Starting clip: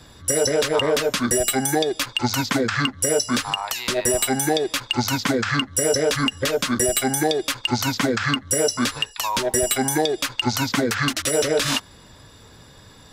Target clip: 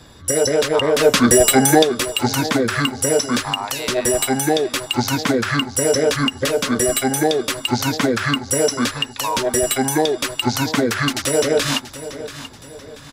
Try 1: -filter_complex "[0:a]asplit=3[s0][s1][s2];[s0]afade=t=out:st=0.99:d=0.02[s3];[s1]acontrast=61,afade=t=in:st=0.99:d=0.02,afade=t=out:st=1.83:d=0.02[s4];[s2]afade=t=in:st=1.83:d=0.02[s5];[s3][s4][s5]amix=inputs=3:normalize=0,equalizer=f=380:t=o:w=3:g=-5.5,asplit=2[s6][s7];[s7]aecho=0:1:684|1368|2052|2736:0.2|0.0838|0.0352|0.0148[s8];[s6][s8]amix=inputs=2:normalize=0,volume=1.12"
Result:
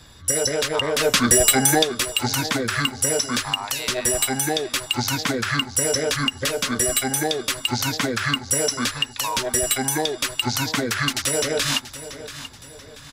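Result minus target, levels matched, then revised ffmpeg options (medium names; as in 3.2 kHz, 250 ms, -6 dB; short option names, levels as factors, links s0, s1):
500 Hz band -4.5 dB
-filter_complex "[0:a]asplit=3[s0][s1][s2];[s0]afade=t=out:st=0.99:d=0.02[s3];[s1]acontrast=61,afade=t=in:st=0.99:d=0.02,afade=t=out:st=1.83:d=0.02[s4];[s2]afade=t=in:st=1.83:d=0.02[s5];[s3][s4][s5]amix=inputs=3:normalize=0,equalizer=f=380:t=o:w=3:g=2.5,asplit=2[s6][s7];[s7]aecho=0:1:684|1368|2052|2736:0.2|0.0838|0.0352|0.0148[s8];[s6][s8]amix=inputs=2:normalize=0,volume=1.12"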